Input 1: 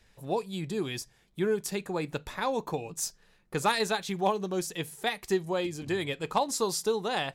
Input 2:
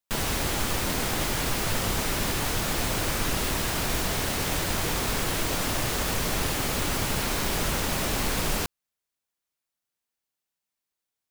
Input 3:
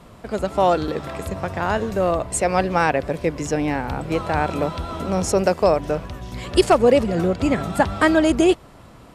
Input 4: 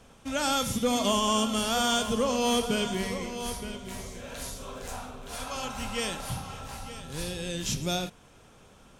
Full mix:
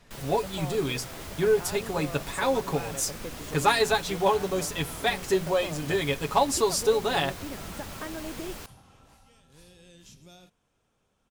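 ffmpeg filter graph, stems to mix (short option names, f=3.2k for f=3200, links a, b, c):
-filter_complex "[0:a]bandreject=f=60:t=h:w=6,bandreject=f=120:t=h:w=6,bandreject=f=180:t=h:w=6,aecho=1:1:7.2:0.8,volume=2dB[a];[1:a]volume=-14dB[b];[2:a]acompressor=threshold=-19dB:ratio=6,volume=-16dB[c];[3:a]acompressor=threshold=-29dB:ratio=6,adelay=2400,volume=-18.5dB[d];[a][b][c][d]amix=inputs=4:normalize=0"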